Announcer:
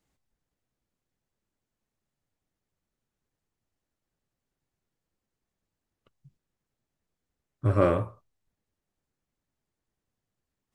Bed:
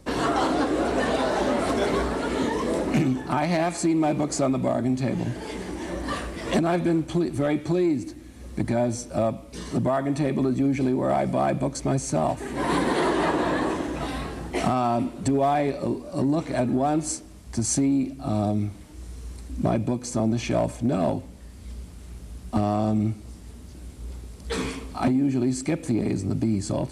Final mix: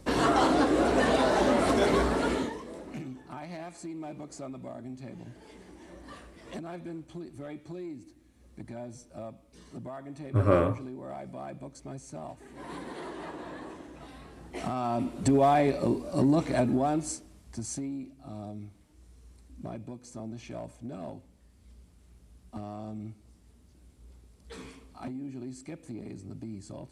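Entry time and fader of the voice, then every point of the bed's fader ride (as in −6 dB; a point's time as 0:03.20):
2.70 s, −0.5 dB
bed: 0:02.30 −0.5 dB
0:02.65 −17.5 dB
0:14.19 −17.5 dB
0:15.31 −0.5 dB
0:16.47 −0.5 dB
0:18.15 −16.5 dB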